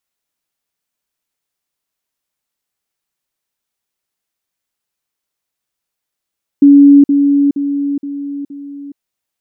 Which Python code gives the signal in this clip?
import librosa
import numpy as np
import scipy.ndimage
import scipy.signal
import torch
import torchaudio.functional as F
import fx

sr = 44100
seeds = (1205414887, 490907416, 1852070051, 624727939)

y = fx.level_ladder(sr, hz=283.0, from_db=-1.5, step_db=-6.0, steps=5, dwell_s=0.42, gap_s=0.05)